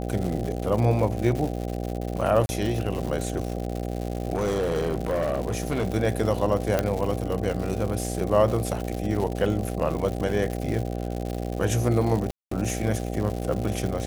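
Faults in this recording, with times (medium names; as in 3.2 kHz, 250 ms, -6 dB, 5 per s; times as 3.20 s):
buzz 60 Hz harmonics 13 -30 dBFS
crackle 180 per s -29 dBFS
2.46–2.49 s: dropout 30 ms
4.35–5.87 s: clipped -20.5 dBFS
6.79 s: pop -9 dBFS
12.31–12.51 s: dropout 204 ms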